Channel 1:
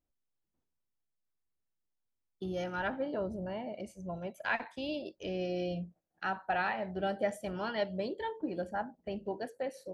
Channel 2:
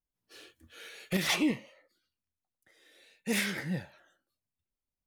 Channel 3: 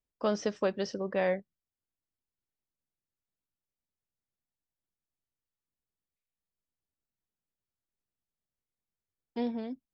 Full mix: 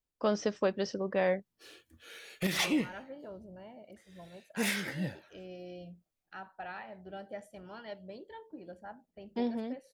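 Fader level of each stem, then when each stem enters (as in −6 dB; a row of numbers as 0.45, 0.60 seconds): −11.0, −1.5, 0.0 decibels; 0.10, 1.30, 0.00 seconds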